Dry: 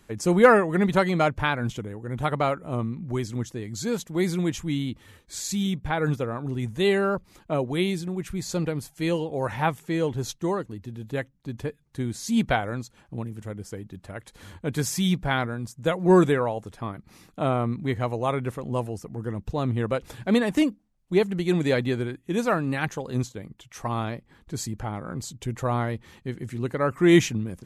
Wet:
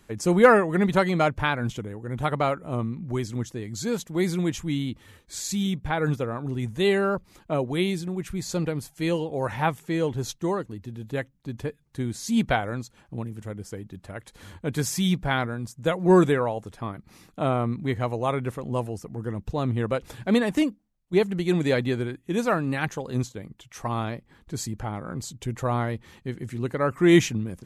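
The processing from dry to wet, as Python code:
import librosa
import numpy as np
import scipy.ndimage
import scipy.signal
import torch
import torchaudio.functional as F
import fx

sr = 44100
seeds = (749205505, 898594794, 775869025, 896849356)

y = fx.edit(x, sr, fx.fade_out_to(start_s=20.47, length_s=0.66, floor_db=-8.0), tone=tone)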